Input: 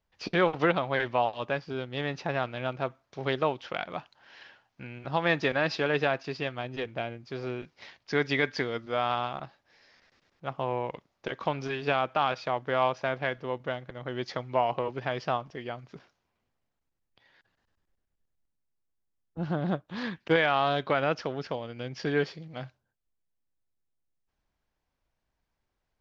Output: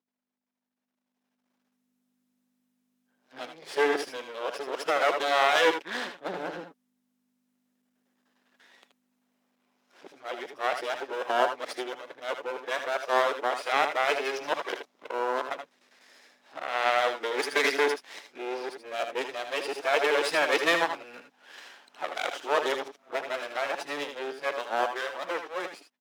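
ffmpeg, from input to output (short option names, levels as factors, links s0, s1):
-filter_complex "[0:a]areverse,aeval=exprs='max(val(0),0)':c=same,aeval=exprs='val(0)+0.000631*(sin(2*PI*50*n/s)+sin(2*PI*2*50*n/s)/2+sin(2*PI*3*50*n/s)/3+sin(2*PI*4*50*n/s)/4+sin(2*PI*5*50*n/s)/5)':c=same,highpass=f=310:w=0.5412,highpass=f=310:w=1.3066,bandreject=f=4500:w=22,asplit=2[s0][s1];[s1]aecho=0:1:76|83:0.355|0.237[s2];[s0][s2]amix=inputs=2:normalize=0,dynaudnorm=f=220:g=13:m=5.96,volume=0.501" -ar 48000 -c:a aac -b:a 96k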